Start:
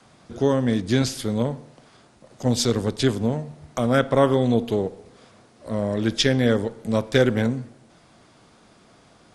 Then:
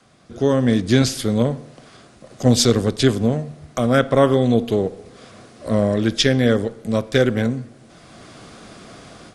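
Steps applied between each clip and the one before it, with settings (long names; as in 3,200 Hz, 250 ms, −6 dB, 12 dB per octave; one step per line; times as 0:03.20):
notch filter 900 Hz, Q 6.5
automatic gain control gain up to 14 dB
level −1 dB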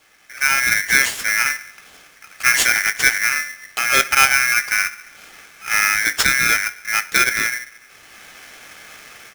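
mains-hum notches 60/120/180/240 Hz
double-tracking delay 20 ms −13 dB
ring modulator with a square carrier 1,900 Hz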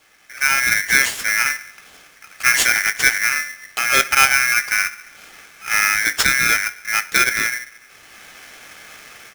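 no processing that can be heard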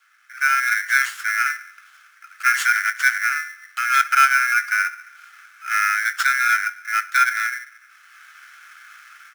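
four-pole ladder high-pass 1,300 Hz, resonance 75%
level +1.5 dB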